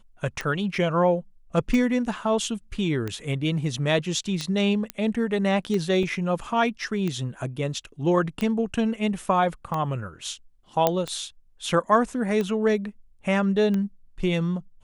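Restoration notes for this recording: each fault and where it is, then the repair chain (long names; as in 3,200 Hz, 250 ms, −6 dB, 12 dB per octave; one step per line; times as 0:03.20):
scratch tick 45 rpm −16 dBFS
0:04.90: click −13 dBFS
0:06.03: drop-out 2.6 ms
0:10.87: click −6 dBFS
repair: click removal
repair the gap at 0:06.03, 2.6 ms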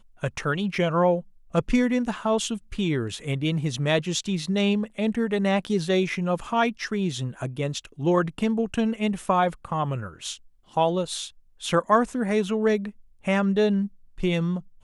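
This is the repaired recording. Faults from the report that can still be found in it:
none of them is left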